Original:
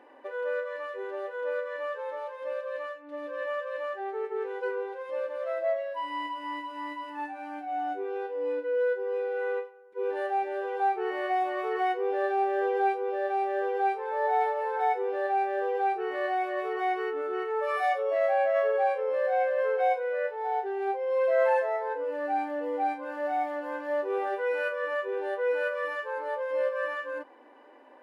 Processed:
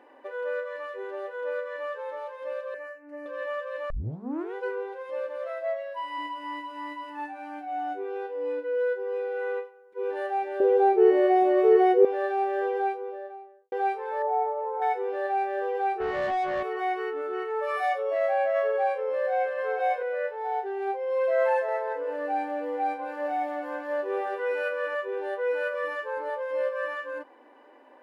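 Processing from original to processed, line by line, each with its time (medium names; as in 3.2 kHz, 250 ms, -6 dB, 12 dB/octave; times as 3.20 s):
2.74–3.26 s: static phaser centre 710 Hz, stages 8
3.90 s: tape start 0.64 s
5.47–6.17 s: high-pass 670 Hz -> 390 Hz
10.60–12.05 s: resonant low shelf 690 Hz +11.5 dB, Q 1.5
12.56–13.72 s: studio fade out
14.22–14.82 s: Savitzky-Golay filter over 65 samples
16.00–16.63 s: overdrive pedal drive 19 dB, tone 1.1 kHz, clips at -20 dBFS
19.09–19.66 s: echo throw 360 ms, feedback 15%, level -7.5 dB
21.49–24.95 s: feedback delay 193 ms, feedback 37%, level -10 dB
25.74–26.30 s: bass shelf 250 Hz +10.5 dB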